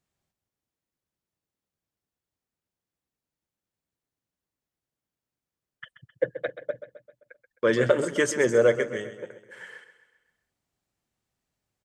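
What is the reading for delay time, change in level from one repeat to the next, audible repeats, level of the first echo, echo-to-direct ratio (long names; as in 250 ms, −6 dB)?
131 ms, −5.5 dB, 4, −12.5 dB, −11.0 dB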